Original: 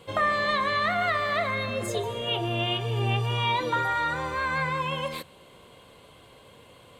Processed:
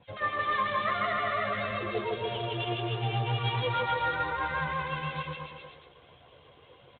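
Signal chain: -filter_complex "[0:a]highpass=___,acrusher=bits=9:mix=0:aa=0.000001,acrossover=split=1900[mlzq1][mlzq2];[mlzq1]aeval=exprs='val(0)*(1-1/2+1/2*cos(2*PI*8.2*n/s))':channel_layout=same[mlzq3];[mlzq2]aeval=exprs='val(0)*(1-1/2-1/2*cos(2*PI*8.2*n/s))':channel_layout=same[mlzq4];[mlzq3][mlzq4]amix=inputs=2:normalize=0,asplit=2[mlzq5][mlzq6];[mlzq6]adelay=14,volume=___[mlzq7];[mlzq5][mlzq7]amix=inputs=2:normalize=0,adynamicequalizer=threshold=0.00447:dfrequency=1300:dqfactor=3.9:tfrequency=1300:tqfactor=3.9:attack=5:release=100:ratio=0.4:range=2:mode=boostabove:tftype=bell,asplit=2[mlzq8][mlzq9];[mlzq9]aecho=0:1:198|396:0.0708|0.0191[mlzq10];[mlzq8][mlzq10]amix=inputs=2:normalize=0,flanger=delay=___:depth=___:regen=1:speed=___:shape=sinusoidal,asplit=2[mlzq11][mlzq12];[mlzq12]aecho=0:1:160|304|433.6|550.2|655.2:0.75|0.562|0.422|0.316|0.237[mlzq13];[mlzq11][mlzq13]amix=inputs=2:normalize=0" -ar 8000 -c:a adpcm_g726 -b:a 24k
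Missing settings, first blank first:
55, -9dB, 1.2, 1.5, 1.3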